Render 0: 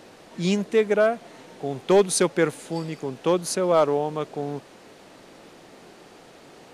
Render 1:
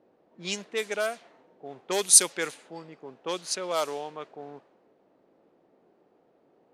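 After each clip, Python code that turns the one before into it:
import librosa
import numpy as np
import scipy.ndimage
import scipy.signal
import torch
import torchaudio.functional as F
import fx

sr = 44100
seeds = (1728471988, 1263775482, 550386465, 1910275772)

y = fx.high_shelf(x, sr, hz=2000.0, db=8.0)
y = fx.env_lowpass(y, sr, base_hz=450.0, full_db=-13.5)
y = fx.riaa(y, sr, side='recording')
y = F.gain(torch.from_numpy(y), -9.0).numpy()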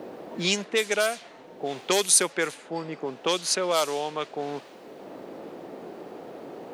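y = fx.band_squash(x, sr, depth_pct=70)
y = F.gain(torch.from_numpy(y), 6.0).numpy()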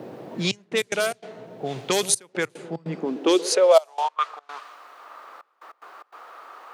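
y = fx.echo_wet_lowpass(x, sr, ms=129, feedback_pct=75, hz=650.0, wet_db=-14.0)
y = fx.step_gate(y, sr, bpm=147, pattern='xxxxx..x.xx.xxxx', floor_db=-24.0, edge_ms=4.5)
y = fx.filter_sweep_highpass(y, sr, from_hz=120.0, to_hz=1200.0, start_s=2.63, end_s=4.21, q=5.5)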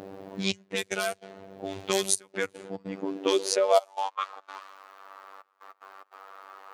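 y = fx.robotise(x, sr, hz=96.9)
y = F.gain(torch.from_numpy(y), -2.0).numpy()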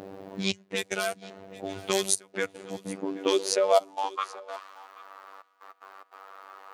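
y = x + 10.0 ** (-20.5 / 20.0) * np.pad(x, (int(780 * sr / 1000.0), 0))[:len(x)]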